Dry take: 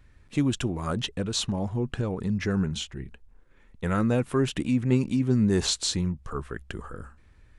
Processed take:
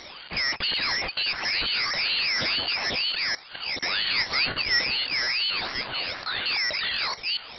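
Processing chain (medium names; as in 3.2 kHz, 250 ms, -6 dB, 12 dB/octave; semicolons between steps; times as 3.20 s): chunks repeated in reverse 670 ms, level -4.5 dB; 5.50–6.46 s: three-band isolator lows -18 dB, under 570 Hz, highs -14 dB, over 2.1 kHz; compression, threshold -25 dBFS, peak gain reduction 9 dB; peak limiter -22.5 dBFS, peak gain reduction 8 dB; overdrive pedal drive 31 dB, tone 2.6 kHz, clips at -22.5 dBFS; 2.09–2.69 s: companded quantiser 4-bit; 3.99–4.85 s: flutter echo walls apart 3.4 m, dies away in 0.21 s; frequency inversion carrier 3.9 kHz; ring modulator with a swept carrier 1.2 kHz, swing 45%, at 2.1 Hz; trim +5 dB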